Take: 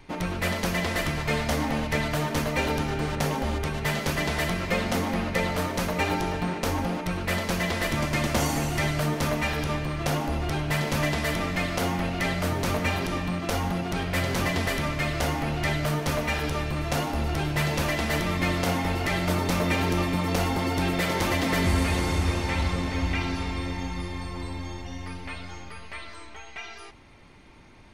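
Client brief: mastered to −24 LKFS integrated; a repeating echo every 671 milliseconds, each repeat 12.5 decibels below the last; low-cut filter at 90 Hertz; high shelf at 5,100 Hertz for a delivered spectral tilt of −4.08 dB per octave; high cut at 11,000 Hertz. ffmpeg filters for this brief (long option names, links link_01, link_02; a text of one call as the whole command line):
ffmpeg -i in.wav -af "highpass=90,lowpass=11000,highshelf=frequency=5100:gain=8,aecho=1:1:671|1342|2013:0.237|0.0569|0.0137,volume=2dB" out.wav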